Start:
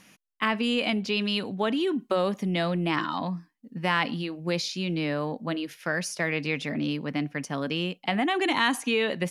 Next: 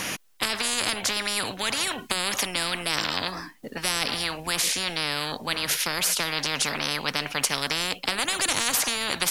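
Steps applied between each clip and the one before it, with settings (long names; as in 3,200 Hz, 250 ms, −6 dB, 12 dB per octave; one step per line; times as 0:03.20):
every bin compressed towards the loudest bin 10 to 1
level +4.5 dB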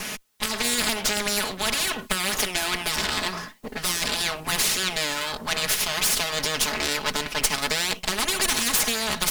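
lower of the sound and its delayed copy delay 4.7 ms
automatic gain control gain up to 4 dB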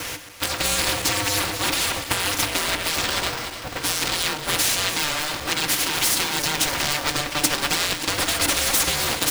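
feedback delay that plays each chunk backwards 146 ms, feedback 75%, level −10.5 dB
ring modulator with a square carrier 300 Hz
level +1.5 dB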